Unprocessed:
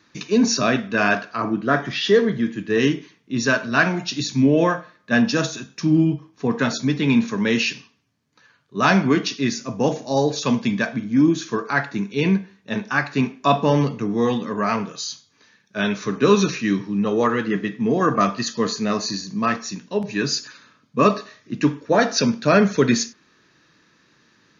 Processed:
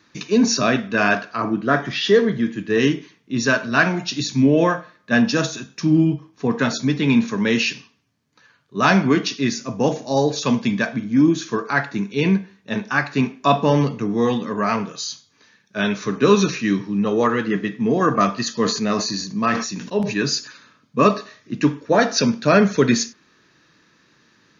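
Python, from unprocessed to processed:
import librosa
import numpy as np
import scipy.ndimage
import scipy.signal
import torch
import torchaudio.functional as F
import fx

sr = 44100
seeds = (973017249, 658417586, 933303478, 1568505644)

y = fx.sustainer(x, sr, db_per_s=68.0, at=(18.59, 20.34))
y = F.gain(torch.from_numpy(y), 1.0).numpy()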